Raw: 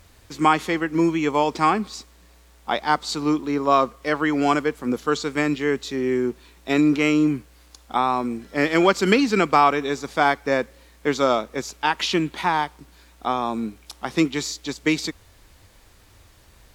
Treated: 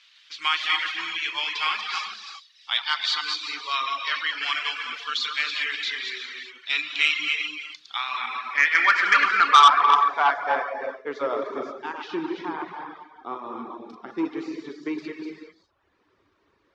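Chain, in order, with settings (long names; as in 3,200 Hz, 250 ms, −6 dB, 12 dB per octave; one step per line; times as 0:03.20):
delay that plays each chunk backwards 153 ms, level −4 dB
flat-topped bell 2,500 Hz +14 dB 3 octaves
reverb whose tail is shaped and stops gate 430 ms flat, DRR 0.5 dB
reverb reduction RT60 0.72 s
band-pass filter sweep 3,200 Hz → 360 Hz, 0:07.85–0:11.76
saturating transformer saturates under 2,000 Hz
level −5.5 dB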